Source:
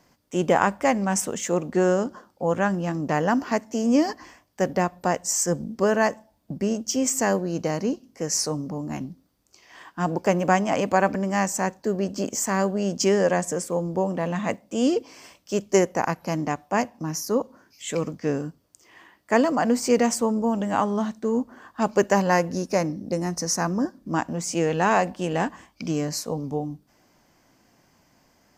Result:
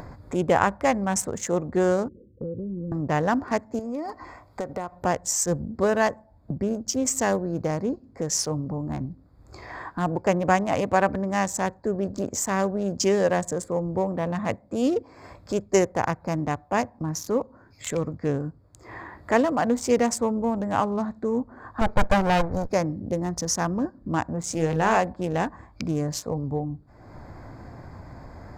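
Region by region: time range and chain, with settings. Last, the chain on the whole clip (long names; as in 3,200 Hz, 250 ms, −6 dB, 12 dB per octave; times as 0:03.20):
0:02.08–0:02.92: Butterworth low-pass 510 Hz 96 dB per octave + downward compressor 2 to 1, threshold −40 dBFS
0:03.79–0:05.02: low-shelf EQ 360 Hz −10 dB + downward compressor 2 to 1, threshold −31 dBFS + Butterworth band-reject 1,700 Hz, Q 8
0:21.81–0:22.71: lower of the sound and its delayed copy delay 1.3 ms + bass and treble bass −2 dB, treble −7 dB + leveller curve on the samples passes 1
0:24.45–0:24.97: transient designer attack −3 dB, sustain +1 dB + double-tracking delay 31 ms −7.5 dB
whole clip: adaptive Wiener filter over 15 samples; low shelf with overshoot 140 Hz +8.5 dB, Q 1.5; upward compression, threshold −25 dBFS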